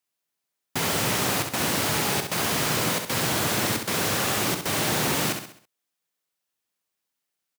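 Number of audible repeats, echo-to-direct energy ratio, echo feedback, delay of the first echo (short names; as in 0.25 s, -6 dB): 4, -5.5 dB, 44%, 66 ms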